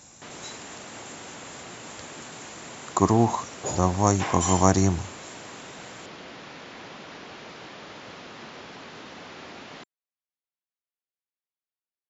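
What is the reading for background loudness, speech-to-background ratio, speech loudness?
-42.0 LUFS, 19.0 dB, -23.0 LUFS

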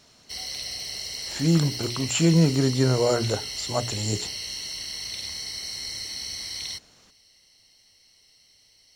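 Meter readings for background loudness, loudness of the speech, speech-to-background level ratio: -31.5 LUFS, -24.0 LUFS, 7.5 dB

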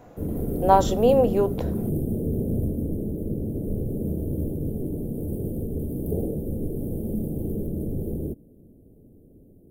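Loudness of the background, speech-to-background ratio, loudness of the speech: -29.0 LUFS, 8.0 dB, -21.0 LUFS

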